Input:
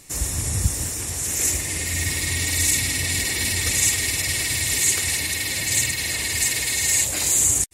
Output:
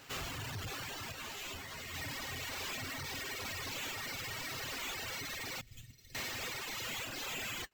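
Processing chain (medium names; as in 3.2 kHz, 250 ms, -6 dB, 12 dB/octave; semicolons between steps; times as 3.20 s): high-pass 43 Hz 24 dB/octave; comb 7.5 ms, depth 77%; flange 0.59 Hz, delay 1.9 ms, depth 3.3 ms, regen +79%; sample-rate reducer 10 kHz, jitter 0%; 5.61–6.15 s: amplifier tone stack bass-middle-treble 10-0-1; saturation -32.5 dBFS, distortion -5 dB; reverb removal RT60 1.4 s; 1.12–1.94 s: three-phase chorus; trim -4 dB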